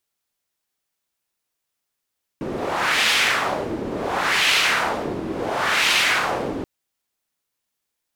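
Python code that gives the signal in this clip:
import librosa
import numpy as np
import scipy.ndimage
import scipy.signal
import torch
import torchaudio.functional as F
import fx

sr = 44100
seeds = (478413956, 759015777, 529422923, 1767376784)

y = fx.wind(sr, seeds[0], length_s=4.23, low_hz=310.0, high_hz=2800.0, q=1.5, gusts=3, swing_db=10.0)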